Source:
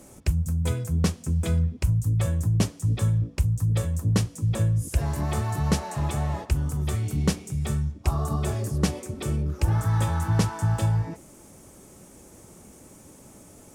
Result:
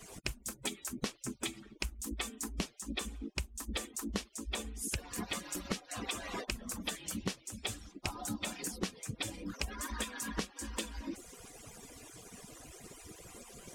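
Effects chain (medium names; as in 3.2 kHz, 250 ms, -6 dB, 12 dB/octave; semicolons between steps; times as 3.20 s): harmonic-percussive separation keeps percussive; peaking EQ 3.1 kHz +9.5 dB 2.3 oct; compression 10:1, threshold -35 dBFS, peak gain reduction 18 dB; trim +1 dB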